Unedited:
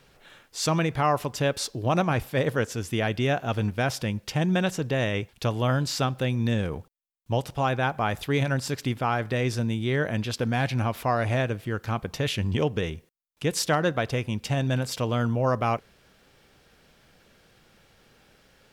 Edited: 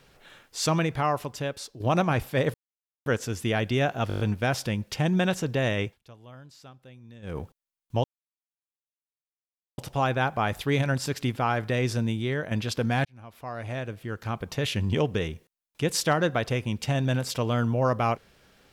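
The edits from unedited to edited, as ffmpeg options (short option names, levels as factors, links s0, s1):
-filter_complex "[0:a]asplit=14[s0][s1][s2][s3][s4][s5][s6][s7][s8][s9][s10][s11][s12][s13];[s0]atrim=end=1.8,asetpts=PTS-STARTPTS,afade=t=out:st=0.71:d=1.09:silence=0.251189[s14];[s1]atrim=start=1.8:end=2.54,asetpts=PTS-STARTPTS,afade=t=in:d=0.004:c=hsin:silence=0.251189,afade=t=out:st=0.736:d=0.004:c=hsin,apad=pad_dur=0.52[s15];[s2]atrim=start=2.54:end=3.582,asetpts=PTS-STARTPTS,afade=t=in:d=0.004:c=hsin[s16];[s3]atrim=start=3.558:end=3.582[s17];[s4]atrim=start=3.558:end=3.582[s18];[s5]atrim=start=3.558:end=3.582[s19];[s6]atrim=start=3.558:end=3.582[s20];[s7]atrim=start=3.558:end=3.582[s21];[s8]atrim=start=3.558:end=5.37,asetpts=PTS-STARTPTS,afade=t=out:st=1.652:d=0.16:silence=0.0707946[s22];[s9]atrim=start=5.37:end=6.58,asetpts=PTS-STARTPTS,volume=0.0708[s23];[s10]atrim=start=6.58:end=7.4,asetpts=PTS-STARTPTS,afade=t=in:d=0.16:silence=0.0707946,afade=t=out:st=0.816:d=0.004:c=hsin,apad=pad_dur=1.74[s24];[s11]atrim=start=7.4:end=10.13,asetpts=PTS-STARTPTS,afade=t=in:d=0.004:c=hsin,afade=t=out:st=2.33:d=0.4:silence=0.421697[s25];[s12]atrim=start=10.13:end=10.67,asetpts=PTS-STARTPTS,afade=t=in:d=0.004:c=hsin:silence=0.421697,afade=t=out:st=0.536:d=0.004:c=hsin[s26];[s13]atrim=start=10.67,asetpts=PTS-STARTPTS,afade=t=in:d=1.75[s27];[s14][s15][s16]concat=n=3:v=0:a=1[s28];[s28][s17]acrossfade=d=0.004:c1=hsin:c2=hsin[s29];[s29][s18]acrossfade=d=0.004:c1=hsin:c2=hsin[s30];[s30][s19]acrossfade=d=0.004:c1=hsin:c2=hsin[s31];[s31][s20]acrossfade=d=0.004:c1=hsin:c2=hsin[s32];[s32][s21]acrossfade=d=0.004:c1=hsin:c2=hsin[s33];[s22][s23][s24][s25][s26][s27]concat=n=6:v=0:a=1[s34];[s33][s34]acrossfade=d=0.004:c1=hsin:c2=hsin"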